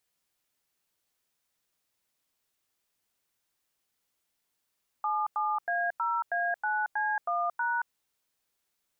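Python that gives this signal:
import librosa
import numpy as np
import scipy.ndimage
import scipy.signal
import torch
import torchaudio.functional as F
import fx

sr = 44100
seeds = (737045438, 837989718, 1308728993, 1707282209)

y = fx.dtmf(sr, digits='77A0A9C1#', tone_ms=226, gap_ms=93, level_db=-29.0)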